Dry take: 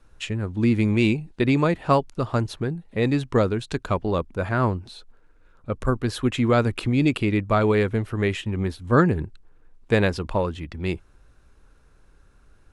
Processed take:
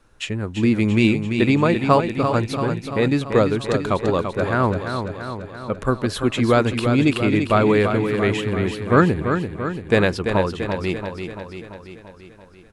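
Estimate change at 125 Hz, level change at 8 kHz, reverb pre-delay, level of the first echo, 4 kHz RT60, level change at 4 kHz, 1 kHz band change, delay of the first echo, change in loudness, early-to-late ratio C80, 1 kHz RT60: +1.5 dB, +4.5 dB, no reverb, -7.0 dB, no reverb, +4.5 dB, +4.5 dB, 339 ms, +3.5 dB, no reverb, no reverb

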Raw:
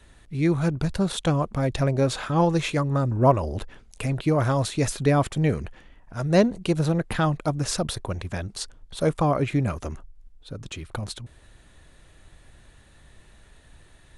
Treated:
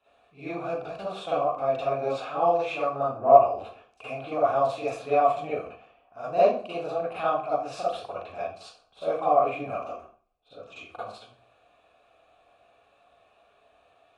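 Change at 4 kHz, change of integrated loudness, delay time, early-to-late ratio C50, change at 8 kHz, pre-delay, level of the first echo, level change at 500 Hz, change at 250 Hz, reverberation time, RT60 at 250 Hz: -10.0 dB, -1.5 dB, no echo, -2.5 dB, under -15 dB, 37 ms, no echo, +2.0 dB, -14.5 dB, 0.45 s, 0.45 s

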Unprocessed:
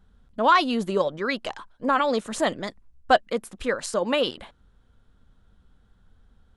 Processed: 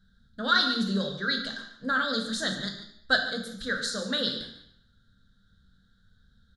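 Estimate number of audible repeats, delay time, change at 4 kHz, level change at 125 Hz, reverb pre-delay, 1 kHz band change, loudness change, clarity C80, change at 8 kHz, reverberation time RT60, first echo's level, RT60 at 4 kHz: 1, 145 ms, +4.0 dB, +2.0 dB, 3 ms, -9.5 dB, -3.5 dB, 9.0 dB, -1.5 dB, 0.70 s, -13.5 dB, 0.70 s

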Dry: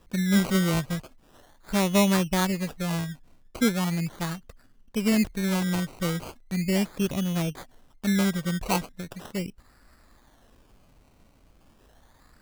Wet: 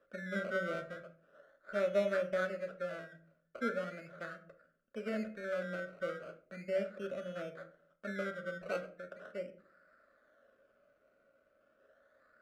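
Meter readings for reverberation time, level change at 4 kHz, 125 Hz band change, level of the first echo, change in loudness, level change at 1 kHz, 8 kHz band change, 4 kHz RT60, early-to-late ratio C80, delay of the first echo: 0.50 s, -20.5 dB, -22.5 dB, no echo, -12.5 dB, -12.5 dB, under -25 dB, 0.30 s, 18.5 dB, no echo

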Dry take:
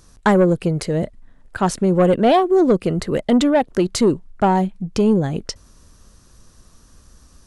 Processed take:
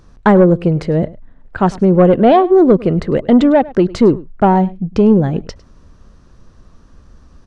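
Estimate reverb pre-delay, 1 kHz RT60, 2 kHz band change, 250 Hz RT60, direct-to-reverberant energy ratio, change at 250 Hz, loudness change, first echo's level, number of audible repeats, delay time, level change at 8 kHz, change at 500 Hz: no reverb, no reverb, +2.0 dB, no reverb, no reverb, +6.0 dB, +5.5 dB, -20.5 dB, 1, 103 ms, under -10 dB, +5.5 dB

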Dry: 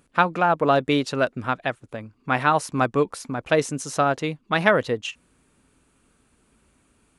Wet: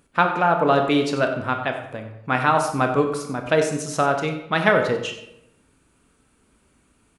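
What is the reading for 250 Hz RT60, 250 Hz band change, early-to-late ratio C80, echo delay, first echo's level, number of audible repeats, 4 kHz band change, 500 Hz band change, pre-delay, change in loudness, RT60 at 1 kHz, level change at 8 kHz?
0.90 s, +1.5 dB, 8.5 dB, 93 ms, -13.5 dB, 1, +1.0 dB, +2.0 dB, 21 ms, +1.5 dB, 0.75 s, +1.0 dB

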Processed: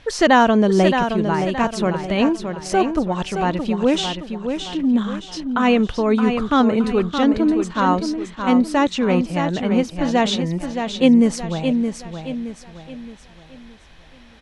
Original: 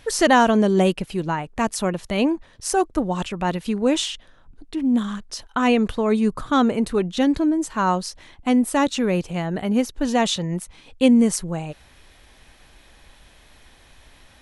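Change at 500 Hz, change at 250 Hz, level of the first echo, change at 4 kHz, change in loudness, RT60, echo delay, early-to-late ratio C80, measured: +3.0 dB, +3.0 dB, -7.0 dB, +2.0 dB, +2.0 dB, no reverb, 620 ms, no reverb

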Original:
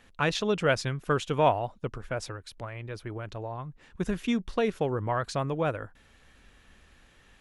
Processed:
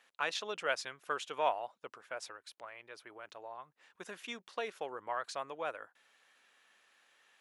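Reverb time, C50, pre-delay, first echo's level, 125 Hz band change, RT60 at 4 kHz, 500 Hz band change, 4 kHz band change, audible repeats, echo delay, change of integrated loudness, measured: no reverb, no reverb, no reverb, no echo, -32.5 dB, no reverb, -11.5 dB, -6.0 dB, no echo, no echo, -9.5 dB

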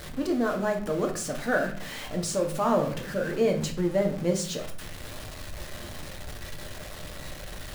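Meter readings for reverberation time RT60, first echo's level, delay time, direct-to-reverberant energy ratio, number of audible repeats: 0.50 s, no echo, no echo, 3.0 dB, no echo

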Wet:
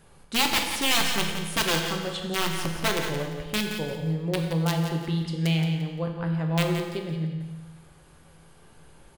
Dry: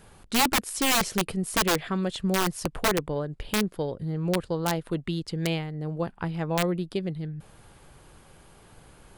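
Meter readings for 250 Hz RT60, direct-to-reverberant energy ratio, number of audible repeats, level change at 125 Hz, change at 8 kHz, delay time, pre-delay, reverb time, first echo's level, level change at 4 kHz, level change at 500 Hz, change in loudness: 1.3 s, 1.5 dB, 3, +4.0 dB, -1.0 dB, 173 ms, 6 ms, 1.3 s, -9.0 dB, +4.0 dB, -1.5 dB, +1.0 dB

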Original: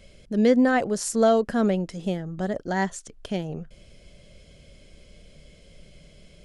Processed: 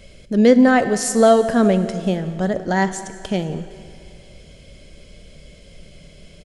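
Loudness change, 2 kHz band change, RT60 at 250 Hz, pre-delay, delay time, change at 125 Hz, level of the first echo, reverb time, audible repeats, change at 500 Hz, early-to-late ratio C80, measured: +7.0 dB, +6.5 dB, 2.4 s, 13 ms, 179 ms, +7.0 dB, -20.5 dB, 2.4 s, 1, +7.0 dB, 12.0 dB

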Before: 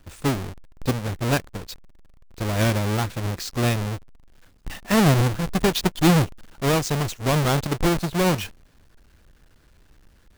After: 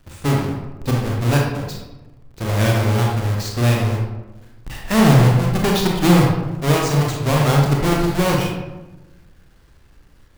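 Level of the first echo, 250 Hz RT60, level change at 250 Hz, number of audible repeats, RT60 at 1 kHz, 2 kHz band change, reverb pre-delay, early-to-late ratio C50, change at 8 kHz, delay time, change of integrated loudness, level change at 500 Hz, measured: no echo, 1.4 s, +4.5 dB, no echo, 1.0 s, +3.5 dB, 26 ms, 1.0 dB, +2.0 dB, no echo, +5.0 dB, +4.0 dB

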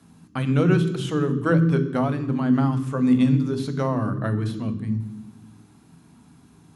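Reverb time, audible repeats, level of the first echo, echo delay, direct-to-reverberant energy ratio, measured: 1.1 s, no echo, no echo, no echo, 9.0 dB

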